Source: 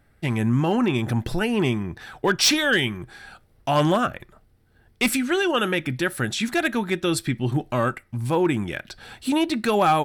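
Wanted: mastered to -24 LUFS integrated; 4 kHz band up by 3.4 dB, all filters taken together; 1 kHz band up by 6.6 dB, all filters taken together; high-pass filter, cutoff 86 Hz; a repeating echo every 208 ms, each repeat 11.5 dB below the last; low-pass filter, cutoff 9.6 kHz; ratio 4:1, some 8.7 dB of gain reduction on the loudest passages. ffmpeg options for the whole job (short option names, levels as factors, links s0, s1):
-af "highpass=86,lowpass=9600,equalizer=f=1000:t=o:g=8.5,equalizer=f=4000:t=o:g=4,acompressor=threshold=0.1:ratio=4,aecho=1:1:208|416|624:0.266|0.0718|0.0194,volume=1.06"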